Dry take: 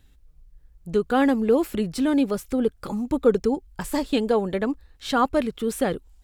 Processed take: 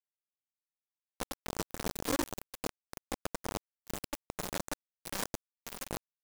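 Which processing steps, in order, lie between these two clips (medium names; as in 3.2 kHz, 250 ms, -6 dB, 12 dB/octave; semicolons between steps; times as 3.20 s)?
expander -44 dBFS; rippled EQ curve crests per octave 1.2, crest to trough 17 dB; valve stage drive 28 dB, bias 0.4; on a send: multi-tap echo 97/583 ms -5/-4.5 dB; on the sum: bit crusher 4-bit; resampled via 22.05 kHz; delay time shaken by noise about 5.7 kHz, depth 0.079 ms; trim -6 dB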